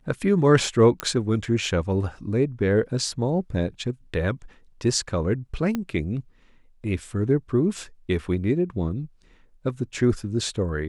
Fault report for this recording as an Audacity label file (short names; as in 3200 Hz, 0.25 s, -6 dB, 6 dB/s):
1.000000	1.000000	pop -9 dBFS
5.750000	5.750000	pop -14 dBFS